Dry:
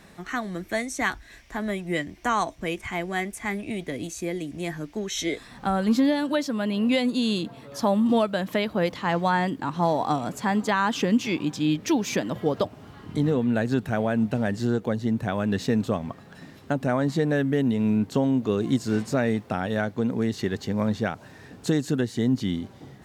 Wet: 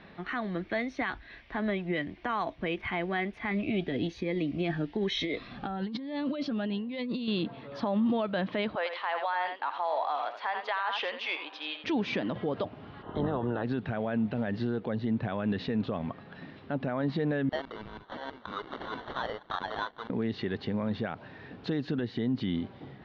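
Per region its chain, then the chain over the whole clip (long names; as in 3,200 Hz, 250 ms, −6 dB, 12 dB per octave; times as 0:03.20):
0:03.51–0:07.28: compressor whose output falls as the input rises −30 dBFS + notch filter 1,500 Hz, Q 18 + phaser whose notches keep moving one way rising 1.1 Hz
0:08.75–0:11.84: high-pass filter 600 Hz 24 dB per octave + single-tap delay 83 ms −9.5 dB + one half of a high-frequency compander decoder only
0:13.01–0:13.63: ceiling on every frequency bin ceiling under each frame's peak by 21 dB + moving average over 19 samples
0:17.49–0:20.10: auto-filter high-pass saw down 6.2 Hz 860–2,900 Hz + sample-rate reduction 2,500 Hz
whole clip: inverse Chebyshev low-pass filter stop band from 7,200 Hz, stop band 40 dB; low-shelf EQ 110 Hz −5.5 dB; brickwall limiter −21.5 dBFS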